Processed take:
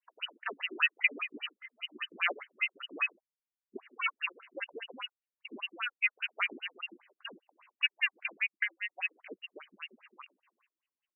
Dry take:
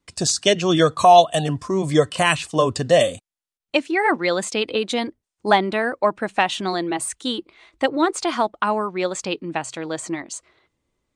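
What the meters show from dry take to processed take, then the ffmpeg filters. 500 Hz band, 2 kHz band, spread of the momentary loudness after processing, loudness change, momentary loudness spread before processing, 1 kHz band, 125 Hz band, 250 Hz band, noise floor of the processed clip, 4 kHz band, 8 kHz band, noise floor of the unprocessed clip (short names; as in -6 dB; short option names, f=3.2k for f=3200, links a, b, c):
-30.5 dB, -6.5 dB, 18 LU, -13.5 dB, 11 LU, -26.0 dB, under -40 dB, -29.0 dB, under -85 dBFS, -13.0 dB, under -40 dB, under -85 dBFS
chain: -af "lowpass=f=3.3k:t=q:w=0.5098,lowpass=f=3.3k:t=q:w=0.6013,lowpass=f=3.3k:t=q:w=0.9,lowpass=f=3.3k:t=q:w=2.563,afreqshift=-3900,aeval=exprs='val(0)*sin(2*PI*790*n/s)':c=same,afftfilt=real='re*between(b*sr/1024,270*pow(2200/270,0.5+0.5*sin(2*PI*5*pts/sr))/1.41,270*pow(2200/270,0.5+0.5*sin(2*PI*5*pts/sr))*1.41)':imag='im*between(b*sr/1024,270*pow(2200/270,0.5+0.5*sin(2*PI*5*pts/sr))/1.41,270*pow(2200/270,0.5+0.5*sin(2*PI*5*pts/sr))*1.41)':win_size=1024:overlap=0.75,volume=-3.5dB"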